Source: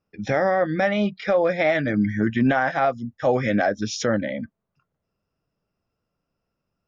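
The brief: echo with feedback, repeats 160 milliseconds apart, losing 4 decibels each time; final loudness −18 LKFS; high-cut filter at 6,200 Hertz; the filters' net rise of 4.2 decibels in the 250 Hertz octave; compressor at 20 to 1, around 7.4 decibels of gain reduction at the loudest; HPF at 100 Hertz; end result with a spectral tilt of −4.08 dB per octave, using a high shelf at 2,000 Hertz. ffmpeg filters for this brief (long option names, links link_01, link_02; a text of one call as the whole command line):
ffmpeg -i in.wav -af "highpass=100,lowpass=6200,equalizer=frequency=250:width_type=o:gain=5.5,highshelf=frequency=2000:gain=-9,acompressor=threshold=-18dB:ratio=20,aecho=1:1:160|320|480|640|800|960|1120|1280|1440:0.631|0.398|0.25|0.158|0.0994|0.0626|0.0394|0.0249|0.0157,volume=4.5dB" out.wav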